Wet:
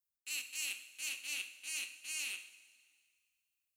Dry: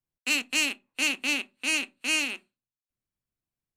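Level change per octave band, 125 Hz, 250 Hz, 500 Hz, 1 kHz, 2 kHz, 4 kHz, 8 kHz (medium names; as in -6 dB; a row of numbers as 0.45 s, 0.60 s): no reading, -33.5 dB, -27.0 dB, -22.5 dB, -15.0 dB, -13.5 dB, -8.0 dB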